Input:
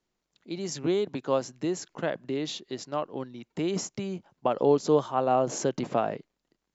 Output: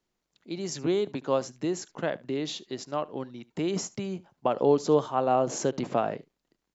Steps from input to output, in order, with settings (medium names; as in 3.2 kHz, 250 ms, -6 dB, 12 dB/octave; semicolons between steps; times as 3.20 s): delay 73 ms -22 dB